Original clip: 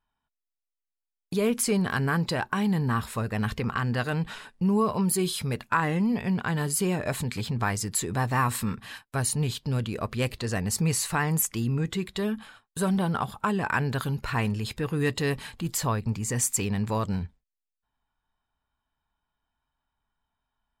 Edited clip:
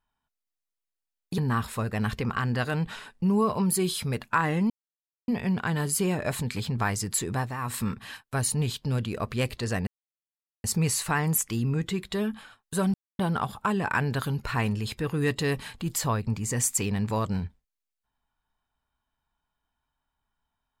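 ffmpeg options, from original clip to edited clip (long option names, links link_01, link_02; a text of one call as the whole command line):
ffmpeg -i in.wav -filter_complex "[0:a]asplit=7[link_01][link_02][link_03][link_04][link_05][link_06][link_07];[link_01]atrim=end=1.382[link_08];[link_02]atrim=start=2.768:end=6.09,asetpts=PTS-STARTPTS,afade=type=out:start_time=3.318:duration=0.004:curve=hsin,apad=pad_dur=0.58[link_09];[link_03]atrim=start=6.09:end=8.38,asetpts=PTS-STARTPTS,afade=type=in:duration=0.004:curve=hsin,afade=type=out:start_time=2.04:duration=0.25:silence=0.281838[link_10];[link_04]atrim=start=8.38:end=8.39,asetpts=PTS-STARTPTS,volume=-11dB[link_11];[link_05]atrim=start=8.39:end=10.68,asetpts=PTS-STARTPTS,afade=type=in:duration=0.25:silence=0.281838,afade=type=out:start_time=2.286:duration=0.004:curve=hsin,apad=pad_dur=0.77[link_12];[link_06]atrim=start=10.68:end=12.98,asetpts=PTS-STARTPTS,afade=type=in:duration=0.004:curve=hsin,afade=type=out:start_time=2.296:duration=0.004:curve=hsin,apad=pad_dur=0.25[link_13];[link_07]atrim=start=12.98,asetpts=PTS-STARTPTS,afade=type=in:duration=0.004:curve=hsin[link_14];[link_09][link_10][link_11][link_12][link_13][link_14]concat=n=6:v=0:a=1[link_15];[link_08][link_15]acrossfade=duration=0.004:curve1=hsin:curve2=hsin" out.wav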